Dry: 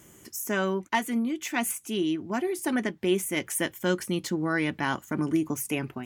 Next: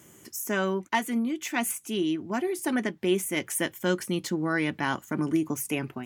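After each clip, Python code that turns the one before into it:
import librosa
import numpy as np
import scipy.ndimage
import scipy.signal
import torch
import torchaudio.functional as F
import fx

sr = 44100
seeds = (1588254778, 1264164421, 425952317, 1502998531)

y = scipy.signal.sosfilt(scipy.signal.butter(2, 83.0, 'highpass', fs=sr, output='sos'), x)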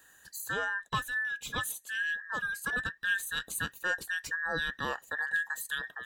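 y = fx.band_invert(x, sr, width_hz=2000)
y = F.gain(torch.from_numpy(y), -6.0).numpy()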